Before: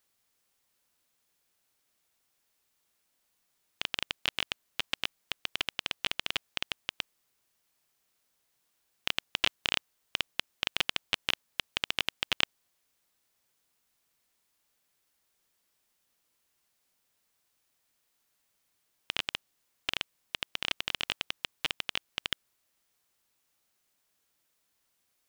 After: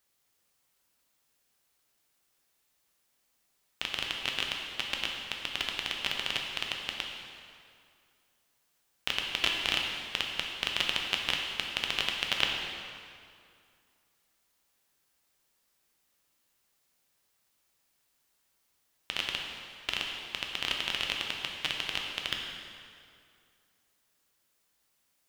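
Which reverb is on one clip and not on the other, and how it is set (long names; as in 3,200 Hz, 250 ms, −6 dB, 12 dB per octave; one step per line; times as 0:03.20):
dense smooth reverb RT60 2.3 s, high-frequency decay 0.8×, DRR 0 dB
level −1 dB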